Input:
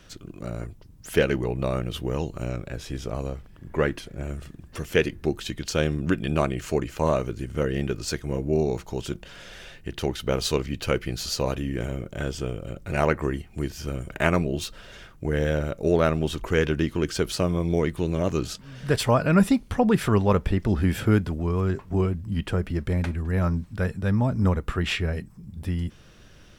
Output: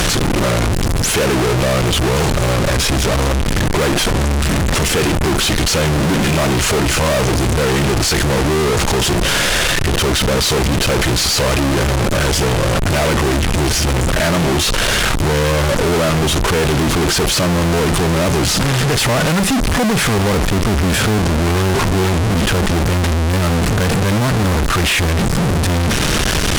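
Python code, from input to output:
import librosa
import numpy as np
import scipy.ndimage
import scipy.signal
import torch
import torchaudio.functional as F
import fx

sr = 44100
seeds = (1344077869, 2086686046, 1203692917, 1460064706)

y = fx.delta_mod(x, sr, bps=64000, step_db=-22.0)
y = fx.fuzz(y, sr, gain_db=31.0, gate_db=-35.0)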